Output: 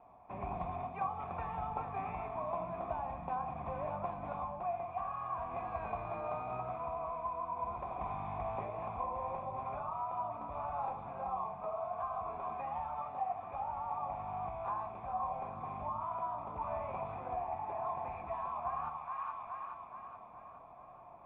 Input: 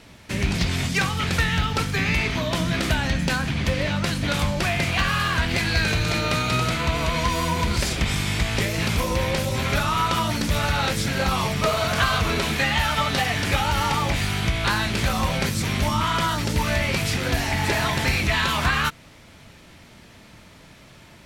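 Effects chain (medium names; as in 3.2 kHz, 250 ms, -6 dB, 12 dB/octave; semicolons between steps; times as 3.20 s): cascade formant filter a; two-band feedback delay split 1 kHz, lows 80 ms, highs 424 ms, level -8.5 dB; gain riding 0.5 s; trim -1 dB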